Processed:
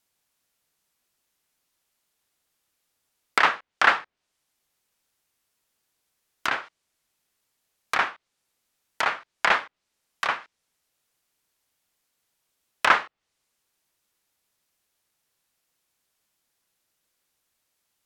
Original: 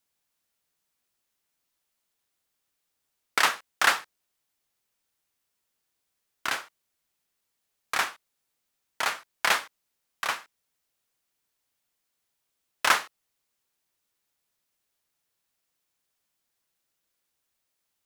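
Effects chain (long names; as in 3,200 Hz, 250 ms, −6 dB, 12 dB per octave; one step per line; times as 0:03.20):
treble cut that deepens with the level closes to 2,500 Hz, closed at −27.5 dBFS
level +4.5 dB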